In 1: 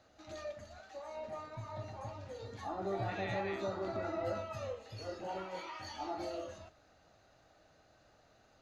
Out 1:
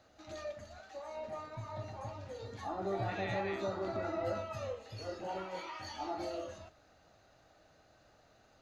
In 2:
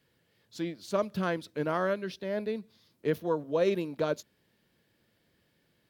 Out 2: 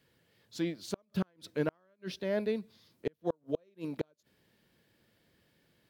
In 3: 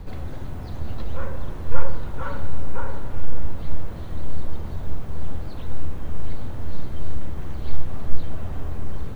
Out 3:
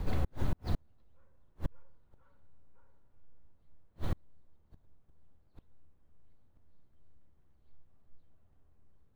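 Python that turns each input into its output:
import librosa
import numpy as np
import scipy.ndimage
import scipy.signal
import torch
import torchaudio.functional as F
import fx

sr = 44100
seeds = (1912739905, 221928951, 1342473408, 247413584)

y = fx.gate_flip(x, sr, shuts_db=-20.0, range_db=-40)
y = F.gain(torch.from_numpy(y), 1.0).numpy()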